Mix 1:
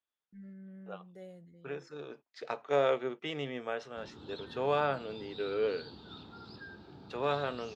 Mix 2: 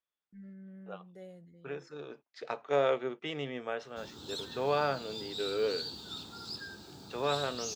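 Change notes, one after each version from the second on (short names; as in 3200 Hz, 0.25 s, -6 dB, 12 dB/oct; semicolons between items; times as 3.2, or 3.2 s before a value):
background: remove air absorption 360 m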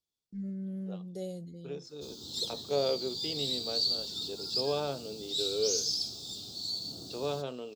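first voice +11.5 dB; background: entry -1.95 s; master: add EQ curve 440 Hz 0 dB, 1100 Hz -9 dB, 1800 Hz -17 dB, 4500 Hz +11 dB, 7100 Hz +7 dB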